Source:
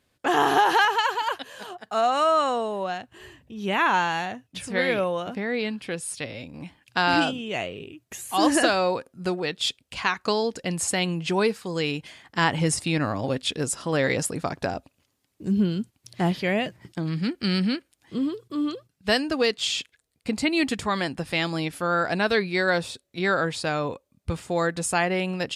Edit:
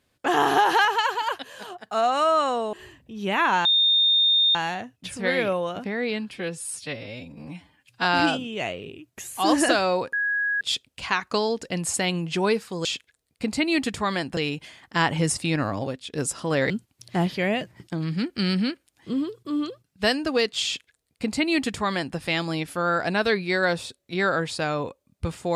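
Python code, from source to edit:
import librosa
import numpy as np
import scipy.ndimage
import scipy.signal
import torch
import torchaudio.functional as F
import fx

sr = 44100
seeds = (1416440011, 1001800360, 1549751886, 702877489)

y = fx.edit(x, sr, fx.cut(start_s=2.73, length_s=0.41),
    fx.insert_tone(at_s=4.06, length_s=0.9, hz=3650.0, db=-16.0),
    fx.stretch_span(start_s=5.85, length_s=1.14, factor=1.5),
    fx.bleep(start_s=9.07, length_s=0.48, hz=1660.0, db=-21.5),
    fx.fade_out_to(start_s=13.22, length_s=0.33, curve='qua', floor_db=-12.0),
    fx.cut(start_s=14.12, length_s=1.63),
    fx.duplicate(start_s=19.7, length_s=1.52, to_s=11.79), tone=tone)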